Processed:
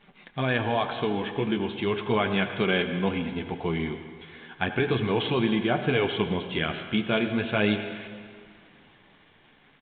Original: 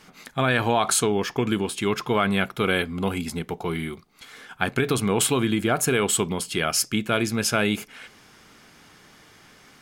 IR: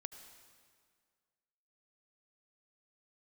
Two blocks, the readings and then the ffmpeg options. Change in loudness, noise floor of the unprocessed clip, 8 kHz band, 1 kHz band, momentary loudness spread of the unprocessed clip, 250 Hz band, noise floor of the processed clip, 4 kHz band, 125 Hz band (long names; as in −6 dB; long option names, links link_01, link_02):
−3.0 dB, −53 dBFS, below −40 dB, −4.0 dB, 10 LU, −1.5 dB, −58 dBFS, −3.5 dB, −2.0 dB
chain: -filter_complex "[0:a]equalizer=frequency=1300:width=6.8:gain=-9.5,dynaudnorm=framelen=390:gausssize=9:maxgain=4dB,acrusher=bits=9:dc=4:mix=0:aa=0.000001,flanger=delay=5:depth=9.3:regen=-30:speed=0.36:shape=sinusoidal[link_01];[1:a]atrim=start_sample=2205[link_02];[link_01][link_02]afir=irnorm=-1:irlink=0,aresample=8000,aresample=44100,volume=3.5dB"